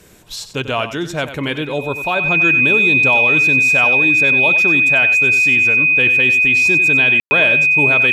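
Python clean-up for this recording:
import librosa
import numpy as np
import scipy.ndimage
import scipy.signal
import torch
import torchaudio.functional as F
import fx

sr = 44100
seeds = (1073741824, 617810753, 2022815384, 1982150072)

y = fx.notch(x, sr, hz=2500.0, q=30.0)
y = fx.fix_ambience(y, sr, seeds[0], print_start_s=0.0, print_end_s=0.5, start_s=7.2, end_s=7.31)
y = fx.fix_echo_inverse(y, sr, delay_ms=94, level_db=-11.5)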